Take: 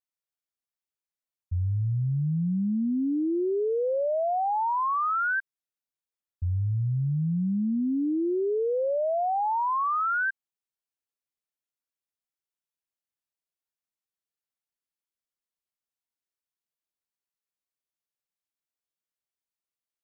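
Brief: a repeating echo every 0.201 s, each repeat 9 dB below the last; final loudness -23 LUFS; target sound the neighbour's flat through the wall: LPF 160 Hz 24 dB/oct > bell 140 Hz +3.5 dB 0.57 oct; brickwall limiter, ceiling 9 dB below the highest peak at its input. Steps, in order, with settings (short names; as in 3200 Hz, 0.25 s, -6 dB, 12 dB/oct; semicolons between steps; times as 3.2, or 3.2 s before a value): limiter -32 dBFS; LPF 160 Hz 24 dB/oct; bell 140 Hz +3.5 dB 0.57 oct; feedback echo 0.201 s, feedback 35%, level -9 dB; gain +14 dB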